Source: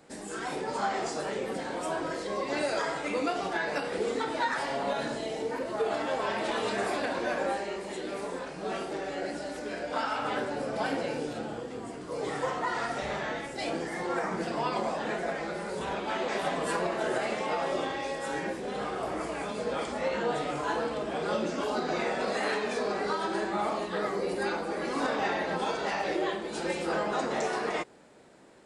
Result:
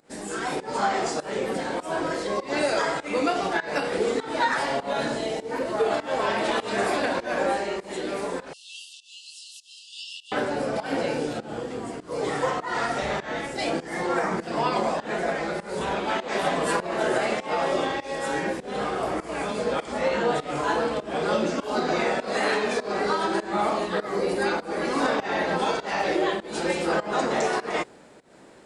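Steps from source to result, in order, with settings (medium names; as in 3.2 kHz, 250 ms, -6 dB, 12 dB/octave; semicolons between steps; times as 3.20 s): 8.53–10.32 s: brick-wall FIR high-pass 2.6 kHz; volume shaper 100 bpm, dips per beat 1, -20 dB, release 224 ms; trim +6 dB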